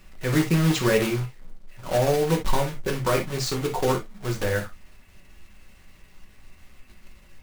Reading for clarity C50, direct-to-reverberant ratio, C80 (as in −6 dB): 10.0 dB, 1.5 dB, 54.0 dB